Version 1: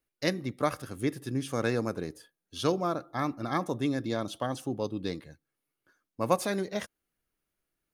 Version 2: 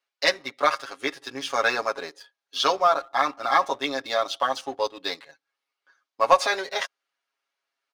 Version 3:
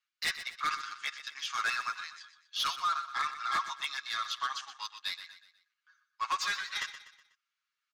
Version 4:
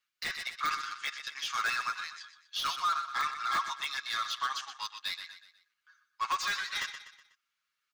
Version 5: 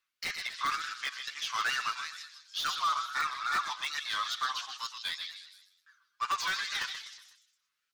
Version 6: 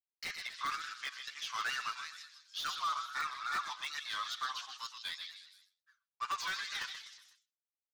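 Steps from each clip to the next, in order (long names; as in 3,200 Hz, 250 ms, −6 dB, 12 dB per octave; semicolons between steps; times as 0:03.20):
Chebyshev band-pass filter 790–4,900 Hz, order 2; comb filter 7.3 ms, depth 84%; leveller curve on the samples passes 1; level +7 dB
elliptic band-pass filter 1,200–7,300 Hz, stop band 40 dB; soft clipping −22.5 dBFS, distortion −10 dB; on a send: repeating echo 123 ms, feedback 42%, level −12 dB; on the sum: level −3 dB
de-essing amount 80%; in parallel at −7.5 dB: hard clipping −38 dBFS, distortion −6 dB
tape wow and flutter 140 cents; echo through a band-pass that steps 157 ms, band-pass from 3,900 Hz, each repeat 0.7 octaves, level −5 dB
downward expander −58 dBFS; level −5.5 dB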